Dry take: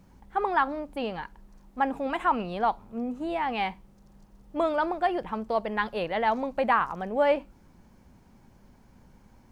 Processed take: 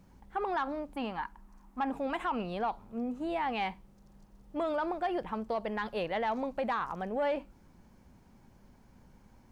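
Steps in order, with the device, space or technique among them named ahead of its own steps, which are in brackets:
0:00.94–0:01.90: octave-band graphic EQ 125/250/500/1,000/4,000 Hz −9/+5/−9/+8/−4 dB
soft clipper into limiter (soft clipping −15 dBFS, distortion −20 dB; brickwall limiter −21.5 dBFS, peak gain reduction 6 dB)
level −3 dB

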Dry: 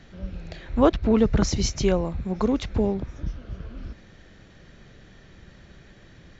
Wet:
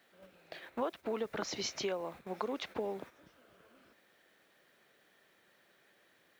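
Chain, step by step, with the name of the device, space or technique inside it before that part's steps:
baby monitor (band-pass filter 490–4,400 Hz; downward compressor 8 to 1, threshold −30 dBFS, peak gain reduction 14 dB; white noise bed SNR 27 dB; noise gate −46 dBFS, range −9 dB)
level −2.5 dB

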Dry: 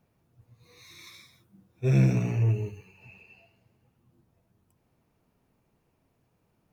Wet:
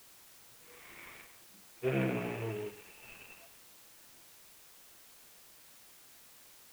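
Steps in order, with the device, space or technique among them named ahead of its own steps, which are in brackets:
army field radio (band-pass filter 350–3,200 Hz; variable-slope delta modulation 16 kbit/s; white noise bed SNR 15 dB)
level +1 dB

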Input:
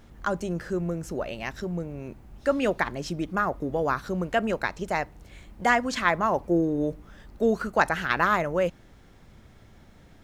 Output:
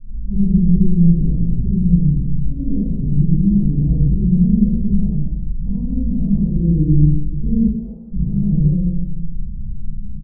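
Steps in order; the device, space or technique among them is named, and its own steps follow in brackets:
club heard from the street (brickwall limiter −17 dBFS, peak gain reduction 10 dB; low-pass filter 180 Hz 24 dB per octave; convolution reverb RT60 1.0 s, pre-delay 46 ms, DRR −6.5 dB)
0:07.67–0:08.11: high-pass filter 320 Hz → 1,100 Hz 12 dB per octave
double-tracking delay 34 ms −11 dB
feedback echo with a band-pass in the loop 150 ms, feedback 66%, band-pass 360 Hz, level −17 dB
rectangular room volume 570 cubic metres, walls furnished, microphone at 9.4 metres

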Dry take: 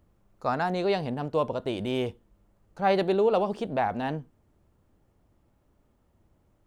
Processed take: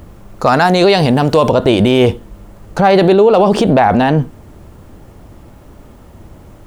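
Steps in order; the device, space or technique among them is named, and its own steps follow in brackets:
0:00.47–0:01.52: high-shelf EQ 3,000 Hz +9.5 dB
loud club master (downward compressor 2.5 to 1, threshold −26 dBFS, peak gain reduction 5.5 dB; hard clipping −19.5 dBFS, distortion −34 dB; boost into a limiter +29 dB)
level −1 dB

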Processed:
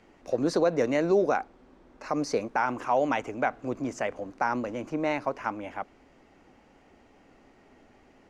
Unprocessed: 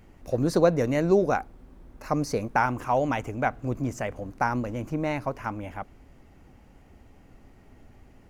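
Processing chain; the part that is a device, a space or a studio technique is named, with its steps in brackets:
DJ mixer with the lows and highs turned down (three-way crossover with the lows and the highs turned down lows −16 dB, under 230 Hz, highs −22 dB, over 7,900 Hz; brickwall limiter −16 dBFS, peak gain reduction 8 dB)
0:01.37–0:02.09: low-pass filter 9,400 Hz
level +1.5 dB

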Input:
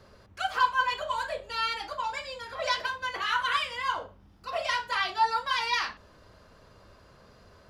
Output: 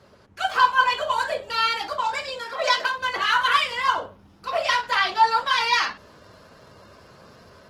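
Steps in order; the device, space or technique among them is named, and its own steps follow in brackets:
0:02.41–0:02.98: high-pass filter 220 Hz 12 dB per octave
video call (high-pass filter 100 Hz 12 dB per octave; automatic gain control gain up to 4 dB; level +3.5 dB; Opus 16 kbit/s 48,000 Hz)

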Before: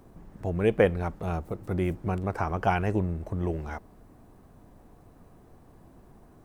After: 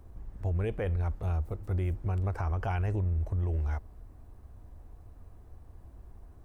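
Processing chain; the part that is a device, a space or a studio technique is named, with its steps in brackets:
car stereo with a boomy subwoofer (low shelf with overshoot 110 Hz +12.5 dB, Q 1.5; brickwall limiter −17.5 dBFS, peak gain reduction 9 dB)
level −5.5 dB

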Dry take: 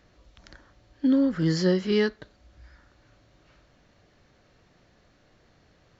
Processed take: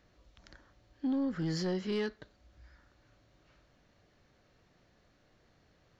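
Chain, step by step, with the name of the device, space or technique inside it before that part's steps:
soft clipper into limiter (soft clipping −17 dBFS, distortion −18 dB; brickwall limiter −20.5 dBFS, peak gain reduction 3 dB)
level −6.5 dB

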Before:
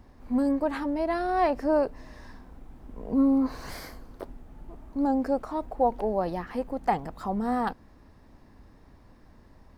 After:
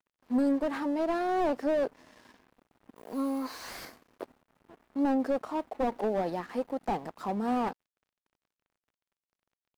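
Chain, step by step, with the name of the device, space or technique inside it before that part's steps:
high-pass filter 200 Hz 12 dB per octave
0:02.96–0:03.85: spectral tilt +4.5 dB per octave
early transistor amplifier (dead-zone distortion −51.5 dBFS; slew-rate limiting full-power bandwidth 33 Hz)

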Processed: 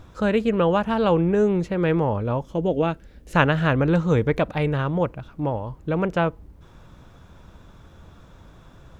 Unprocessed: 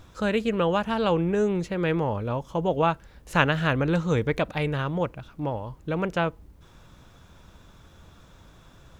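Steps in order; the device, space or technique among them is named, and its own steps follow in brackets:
0:02.45–0:03.36: octave-band graphic EQ 125/250/1,000 Hz −6/+4/−11 dB
behind a face mask (high-shelf EQ 2,100 Hz −8 dB)
level +4.5 dB

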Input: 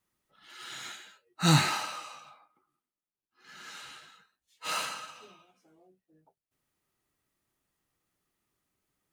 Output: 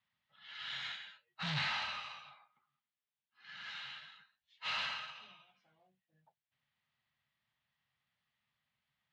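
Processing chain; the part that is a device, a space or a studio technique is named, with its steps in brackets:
scooped metal amplifier (tube saturation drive 36 dB, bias 0.7; loudspeaker in its box 110–3,400 Hz, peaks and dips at 140 Hz +7 dB, 230 Hz +10 dB, 420 Hz −8 dB, 1,300 Hz −6 dB, 2,500 Hz −4 dB; guitar amp tone stack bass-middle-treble 10-0-10)
level +12 dB

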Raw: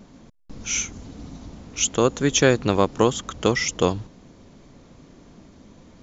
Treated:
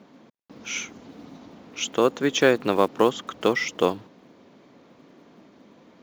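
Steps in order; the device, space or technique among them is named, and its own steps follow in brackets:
early digital voice recorder (band-pass filter 250–3,700 Hz; one scale factor per block 7 bits)

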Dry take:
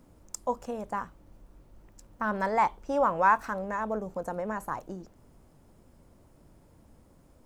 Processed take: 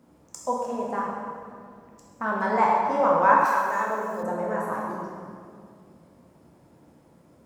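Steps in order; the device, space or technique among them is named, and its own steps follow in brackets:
high-pass filter 140 Hz 12 dB per octave
swimming-pool hall (convolution reverb RT60 2.2 s, pre-delay 7 ms, DRR −3.5 dB; high-shelf EQ 5,000 Hz −5.5 dB)
0:03.45–0:04.23: RIAA equalisation recording

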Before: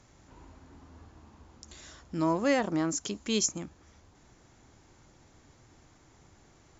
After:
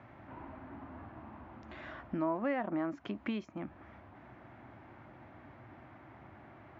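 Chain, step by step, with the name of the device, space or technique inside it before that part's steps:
bass amplifier (downward compressor 4 to 1, threshold −40 dBFS, peak gain reduction 16 dB; loudspeaker in its box 73–2,300 Hz, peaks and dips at 81 Hz −9 dB, 160 Hz −7 dB, 450 Hz −10 dB, 650 Hz +5 dB)
level +8 dB

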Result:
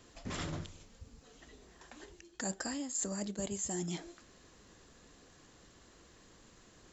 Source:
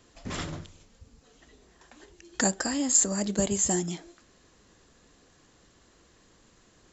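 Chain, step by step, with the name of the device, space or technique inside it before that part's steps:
compression on the reversed sound (reversed playback; downward compressor 5 to 1, threshold −36 dBFS, peak gain reduction 17.5 dB; reversed playback)

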